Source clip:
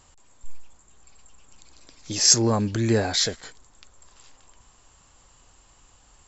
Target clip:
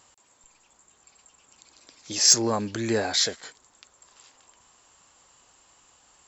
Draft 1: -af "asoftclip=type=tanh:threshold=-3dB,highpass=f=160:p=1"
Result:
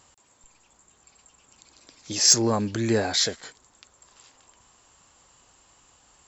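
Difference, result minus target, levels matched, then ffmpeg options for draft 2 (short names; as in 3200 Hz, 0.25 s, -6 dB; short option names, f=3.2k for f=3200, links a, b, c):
125 Hz band +5.0 dB
-af "asoftclip=type=tanh:threshold=-3dB,highpass=f=350:p=1"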